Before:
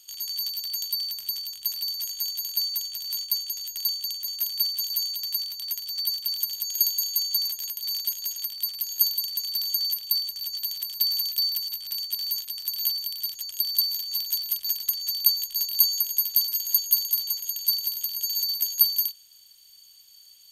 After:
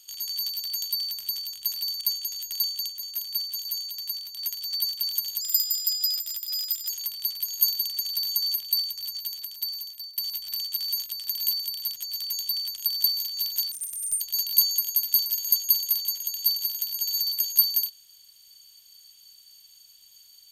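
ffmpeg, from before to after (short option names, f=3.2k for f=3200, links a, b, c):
-filter_complex "[0:a]asplit=11[a][b][c][d][e][f][g][h][i][j][k];[a]atrim=end=2.012[l];[b]atrim=start=3.258:end=4.142[m];[c]atrim=start=4.138:end=5.642,asetpts=PTS-STARTPTS,volume=-4dB[n];[d]atrim=start=5.638:end=6.664[o];[e]atrim=start=6.66:end=8.28,asetpts=PTS-STARTPTS,asetrate=48069,aresample=44100,atrim=end_sample=65543,asetpts=PTS-STARTPTS[p];[f]atrim=start=8.276:end=11.56,asetpts=PTS-STARTPTS,afade=t=out:st=1.944:d=1.34:silence=0.0944061[q];[g]atrim=start=11.56:end=13.492,asetpts=PTS-STARTPTS,afade=t=in:d=0.004:c=hsin:silence=0.0944061[r];[h]atrim=start=0.538:end=1.182[s];[i]atrim=start=13.488:end=14.464[t];[j]atrim=start=14.46:end=15.43,asetpts=PTS-STARTPTS,asetrate=86877,aresample=44100,atrim=end_sample=21714,asetpts=PTS-STARTPTS[u];[k]atrim=start=15.426[v];[l][m]acrossfade=d=0.004:c1=hsin:c2=hsin[w];[w][n]acrossfade=d=0.004:c1=hsin:c2=hsin[x];[x][o]acrossfade=d=0.004:c1=hsin:c2=hsin[y];[y][p]acrossfade=d=0.004:c1=hsin:c2=hsin[z];[q][r]concat=n=2:v=0:a=1[aa];[z][aa]acrossfade=d=0.004:c1=hsin:c2=hsin[ab];[ab][s]acrossfade=d=0.004:c1=hsin:c2=hsin[ac];[ac][t]acrossfade=d=0.004:c1=hsin:c2=hsin[ad];[ad][u]acrossfade=d=0.004:c1=hsin:c2=hsin[ae];[ae][v]acrossfade=d=0.004:c1=hsin:c2=hsin"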